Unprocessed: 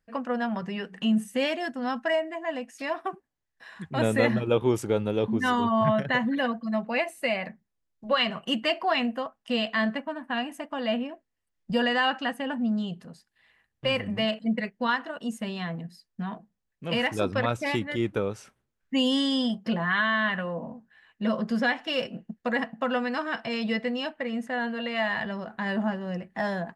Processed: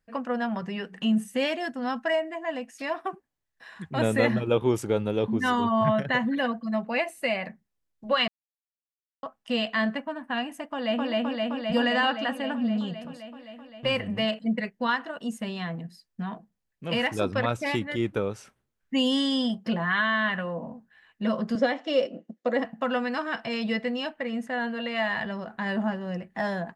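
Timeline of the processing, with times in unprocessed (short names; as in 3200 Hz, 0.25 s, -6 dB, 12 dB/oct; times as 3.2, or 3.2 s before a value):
8.28–9.23 mute
10.64–11.09 echo throw 0.26 s, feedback 80%, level 0 dB
21.55–22.65 speaker cabinet 270–7500 Hz, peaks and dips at 290 Hz +8 dB, 550 Hz +9 dB, 930 Hz -5 dB, 1600 Hz -7 dB, 2600 Hz -6 dB, 4700 Hz -3 dB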